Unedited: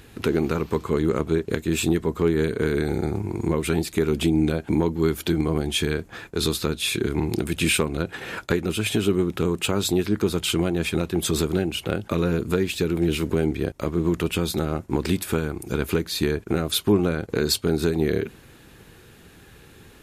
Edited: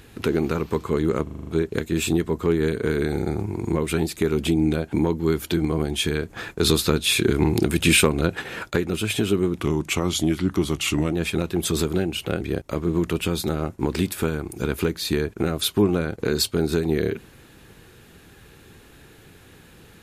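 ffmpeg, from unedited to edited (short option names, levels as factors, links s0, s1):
-filter_complex "[0:a]asplit=12[s0][s1][s2][s3][s4][s5][s6][s7][s8][s9][s10][s11];[s0]atrim=end=1.272[s12];[s1]atrim=start=1.228:end=1.272[s13];[s2]atrim=start=1.228:end=1.272[s14];[s3]atrim=start=1.228:end=1.272[s15];[s4]atrim=start=1.228:end=1.272[s16];[s5]atrim=start=1.228:end=1.272[s17];[s6]atrim=start=1.228:end=6.062[s18];[s7]atrim=start=6.058:end=8.182,asetpts=PTS-STARTPTS,volume=1.68[s19];[s8]atrim=start=8.178:end=9.374[s20];[s9]atrim=start=9.37:end=10.72,asetpts=PTS-STARTPTS,asetrate=39249,aresample=44100,atrim=end_sample=66893,asetpts=PTS-STARTPTS[s21];[s10]atrim=start=10.716:end=12.002[s22];[s11]atrim=start=13.508[s23];[s12][s13]acrossfade=d=0.004:c1=hsin:c2=hsin[s24];[s24][s14]acrossfade=d=0.004:c1=hsin:c2=hsin[s25];[s25][s15]acrossfade=d=0.004:c1=hsin:c2=hsin[s26];[s26][s16]acrossfade=d=0.004:c1=hsin:c2=hsin[s27];[s27][s17]acrossfade=d=0.004:c1=hsin:c2=hsin[s28];[s28][s18]acrossfade=d=0.004:c1=hsin:c2=hsin[s29];[s29][s19]acrossfade=d=0.004:c1=hsin:c2=hsin[s30];[s30][s20]acrossfade=d=0.004:c1=hsin:c2=hsin[s31];[s31][s21]acrossfade=d=0.004:c1=hsin:c2=hsin[s32];[s32][s22]acrossfade=d=0.004:c1=hsin:c2=hsin[s33];[s33][s23]acrossfade=d=0.004:c1=hsin:c2=hsin"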